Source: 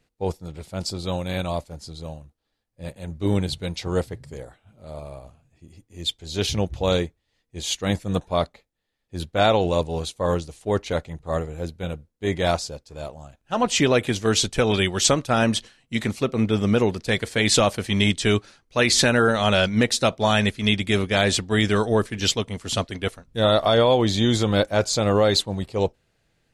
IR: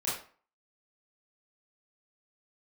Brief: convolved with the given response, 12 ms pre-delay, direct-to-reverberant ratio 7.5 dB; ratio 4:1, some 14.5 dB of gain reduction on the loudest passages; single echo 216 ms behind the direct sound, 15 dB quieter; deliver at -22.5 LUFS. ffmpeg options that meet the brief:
-filter_complex "[0:a]acompressor=threshold=0.0224:ratio=4,aecho=1:1:216:0.178,asplit=2[s0][s1];[1:a]atrim=start_sample=2205,adelay=12[s2];[s1][s2]afir=irnorm=-1:irlink=0,volume=0.211[s3];[s0][s3]amix=inputs=2:normalize=0,volume=3.98"

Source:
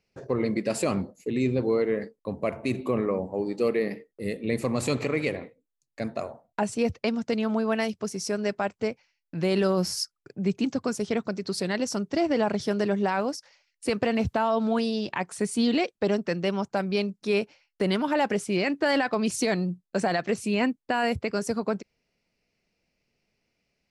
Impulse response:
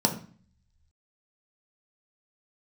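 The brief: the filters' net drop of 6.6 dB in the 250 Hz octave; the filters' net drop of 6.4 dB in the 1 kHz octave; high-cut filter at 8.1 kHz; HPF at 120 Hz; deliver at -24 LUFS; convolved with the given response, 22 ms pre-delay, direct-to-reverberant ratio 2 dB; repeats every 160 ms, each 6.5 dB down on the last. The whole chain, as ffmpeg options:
-filter_complex "[0:a]highpass=120,lowpass=8100,equalizer=f=250:t=o:g=-7.5,equalizer=f=1000:t=o:g=-8.5,aecho=1:1:160|320|480|640|800|960:0.473|0.222|0.105|0.0491|0.0231|0.0109,asplit=2[s0][s1];[1:a]atrim=start_sample=2205,adelay=22[s2];[s1][s2]afir=irnorm=-1:irlink=0,volume=0.211[s3];[s0][s3]amix=inputs=2:normalize=0,volume=1.19"

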